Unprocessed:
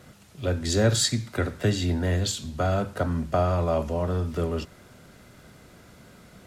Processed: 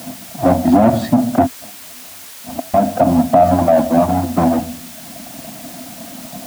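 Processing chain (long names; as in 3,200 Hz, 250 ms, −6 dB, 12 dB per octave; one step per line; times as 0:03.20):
each half-wave held at its own peak
reverb reduction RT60 1.1 s
harmonic and percussive parts rebalanced harmonic −6 dB
rectangular room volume 1,000 cubic metres, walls furnished, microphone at 0.76 metres
0:01.46–0:02.74: gate with flip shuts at −26 dBFS, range −36 dB
pair of resonant band-passes 420 Hz, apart 1.4 octaves
spectral tilt −3 dB per octave
background noise white −62 dBFS
low-shelf EQ 360 Hz −9.5 dB
boost into a limiter +27.5 dB
level −1 dB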